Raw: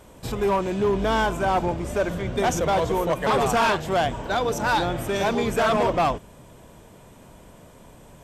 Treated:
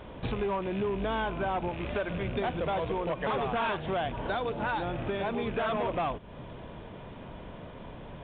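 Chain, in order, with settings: rattling part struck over -29 dBFS, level -29 dBFS; 1.69–2.1 tilt shelf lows -3.5 dB; compressor 5:1, threshold -34 dBFS, peak gain reduction 13.5 dB; 4.71–5.4 air absorption 150 m; gain +4 dB; µ-law 64 kbps 8000 Hz

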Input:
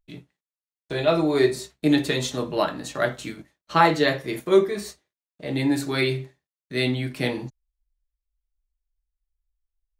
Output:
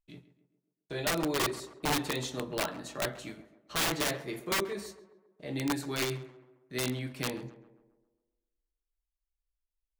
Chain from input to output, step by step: wrapped overs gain 14.5 dB; tape echo 0.133 s, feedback 56%, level -13 dB, low-pass 1600 Hz; gain -9 dB

